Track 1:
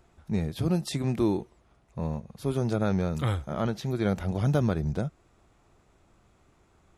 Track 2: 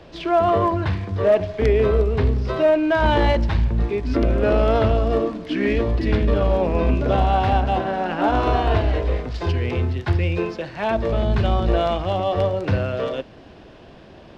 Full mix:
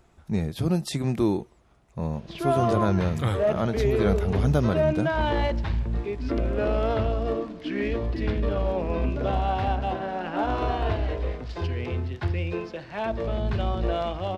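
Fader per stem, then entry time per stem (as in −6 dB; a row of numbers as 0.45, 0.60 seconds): +2.0, −7.0 decibels; 0.00, 2.15 seconds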